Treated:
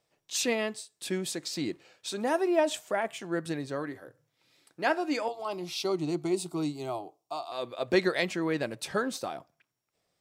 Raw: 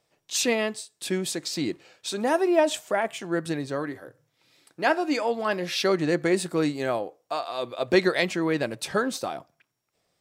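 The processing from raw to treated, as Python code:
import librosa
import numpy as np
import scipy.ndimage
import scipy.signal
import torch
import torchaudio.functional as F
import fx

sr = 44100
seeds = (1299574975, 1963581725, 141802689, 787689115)

y = fx.fixed_phaser(x, sr, hz=340.0, stages=8, at=(5.28, 7.52))
y = y * librosa.db_to_amplitude(-4.5)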